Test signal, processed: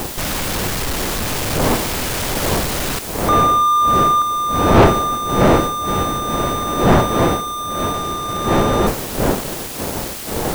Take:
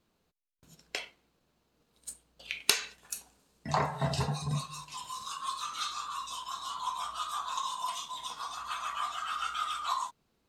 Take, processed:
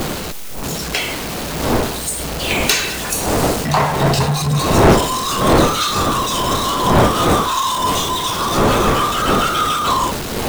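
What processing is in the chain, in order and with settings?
zero-crossing step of -28.5 dBFS; wind noise 590 Hz -29 dBFS; sample leveller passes 3

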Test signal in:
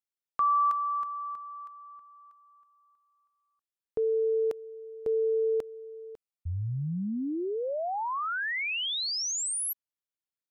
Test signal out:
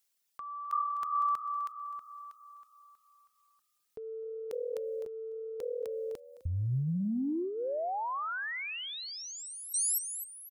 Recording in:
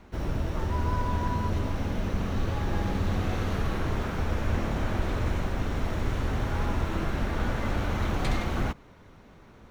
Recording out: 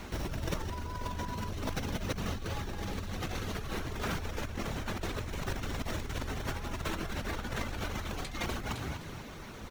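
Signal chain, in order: reverb removal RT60 0.6 s; high shelf 2600 Hz +11.5 dB; on a send: frequency-shifting echo 0.255 s, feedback 35%, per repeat +40 Hz, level -17.5 dB; on the sum: dynamic EQ 420 Hz, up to +6 dB, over -44 dBFS, Q 6.5; negative-ratio compressor -36 dBFS, ratio -1

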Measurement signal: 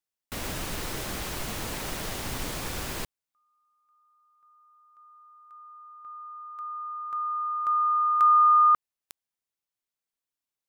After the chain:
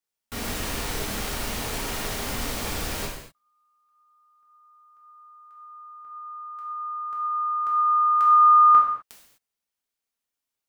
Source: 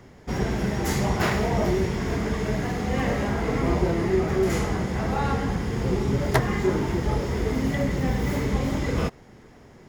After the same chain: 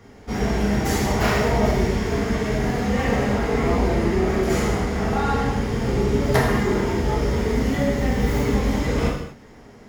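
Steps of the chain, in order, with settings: non-linear reverb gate 0.28 s falling, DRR -4 dB; gain -1.5 dB

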